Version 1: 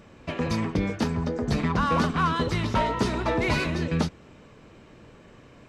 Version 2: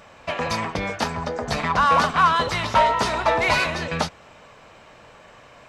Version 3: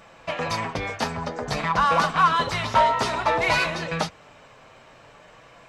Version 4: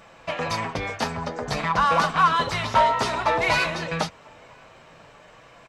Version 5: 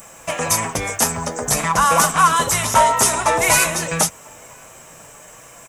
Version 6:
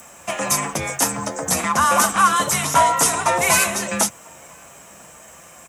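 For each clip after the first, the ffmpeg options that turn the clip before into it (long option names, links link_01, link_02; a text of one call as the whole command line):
ffmpeg -i in.wav -af "lowshelf=frequency=480:width_type=q:width=1.5:gain=-10.5,volume=7dB" out.wav
ffmpeg -i in.wav -af "flanger=delay=5.9:depth=1.8:regen=-43:speed=0.53:shape=sinusoidal,volume=2dB" out.wav
ffmpeg -i in.wav -filter_complex "[0:a]asplit=2[link_01][link_02];[link_02]adelay=991.3,volume=-29dB,highshelf=frequency=4000:gain=-22.3[link_03];[link_01][link_03]amix=inputs=2:normalize=0" out.wav
ffmpeg -i in.wav -af "aexciter=amount=14.3:drive=6.2:freq=6500,volume=4.5dB" out.wav
ffmpeg -i in.wav -af "afreqshift=38,volume=-1.5dB" out.wav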